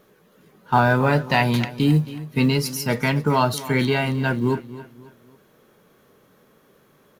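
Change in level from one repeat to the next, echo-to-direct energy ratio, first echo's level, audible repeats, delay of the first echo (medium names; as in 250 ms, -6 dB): -8.5 dB, -15.5 dB, -16.0 dB, 3, 270 ms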